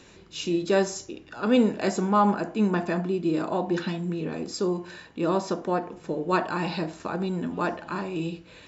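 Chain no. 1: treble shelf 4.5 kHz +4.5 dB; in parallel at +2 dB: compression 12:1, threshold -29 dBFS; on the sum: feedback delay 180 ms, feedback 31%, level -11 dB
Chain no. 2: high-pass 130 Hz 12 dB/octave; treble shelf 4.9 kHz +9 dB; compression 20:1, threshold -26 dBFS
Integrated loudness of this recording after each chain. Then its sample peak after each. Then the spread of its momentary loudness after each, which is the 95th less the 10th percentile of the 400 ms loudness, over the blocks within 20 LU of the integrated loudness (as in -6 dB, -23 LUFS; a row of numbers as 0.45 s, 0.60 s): -23.0 LUFS, -32.0 LUFS; -7.0 dBFS, -16.0 dBFS; 7 LU, 4 LU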